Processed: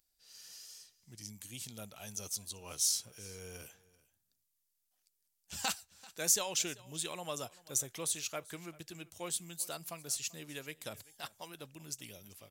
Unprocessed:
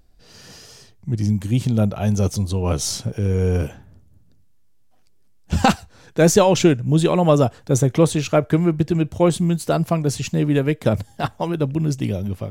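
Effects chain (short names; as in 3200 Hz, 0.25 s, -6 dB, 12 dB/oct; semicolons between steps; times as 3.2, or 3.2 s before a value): pre-emphasis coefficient 0.97; on a send: echo 0.388 s -21.5 dB; on the sum: gain -4.5 dB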